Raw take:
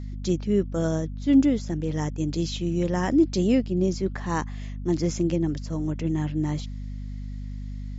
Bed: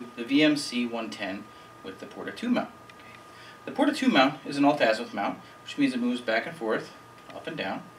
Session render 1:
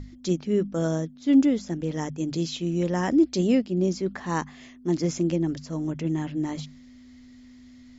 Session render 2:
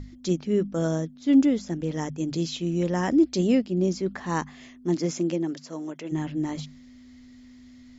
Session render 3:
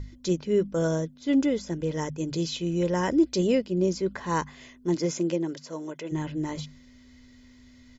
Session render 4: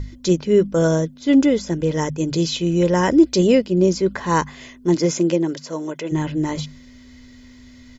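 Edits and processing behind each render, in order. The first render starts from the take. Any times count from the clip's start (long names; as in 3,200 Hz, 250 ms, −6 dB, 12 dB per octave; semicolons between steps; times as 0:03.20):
mains-hum notches 50/100/150/200 Hz
0:04.94–0:06.11: high-pass filter 150 Hz → 460 Hz
comb filter 2 ms, depth 46%
level +8.5 dB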